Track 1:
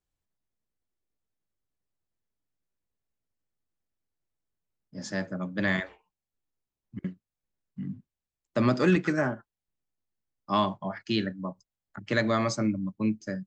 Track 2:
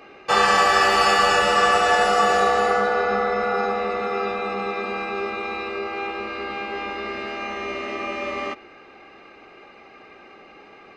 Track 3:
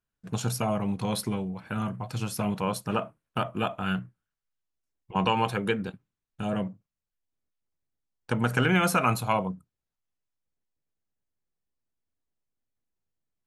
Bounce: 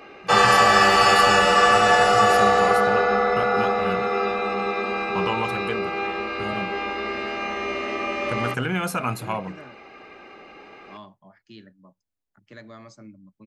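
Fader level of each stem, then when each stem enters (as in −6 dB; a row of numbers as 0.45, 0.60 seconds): −18.0, +1.5, −2.5 decibels; 0.40, 0.00, 0.00 seconds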